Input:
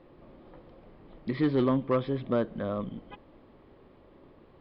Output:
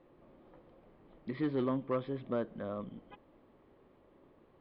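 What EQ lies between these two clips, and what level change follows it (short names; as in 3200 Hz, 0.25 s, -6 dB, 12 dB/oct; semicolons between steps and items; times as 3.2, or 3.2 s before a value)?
air absorption 150 m; low shelf 140 Hz -6 dB; -6.0 dB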